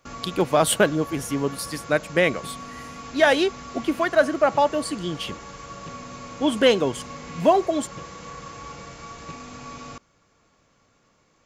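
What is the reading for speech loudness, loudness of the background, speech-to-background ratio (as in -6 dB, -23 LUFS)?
-22.5 LUFS, -38.5 LUFS, 16.0 dB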